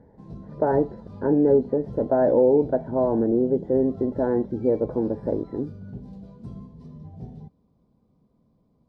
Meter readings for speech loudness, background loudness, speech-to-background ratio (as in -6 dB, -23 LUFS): -23.0 LUFS, -41.0 LUFS, 18.0 dB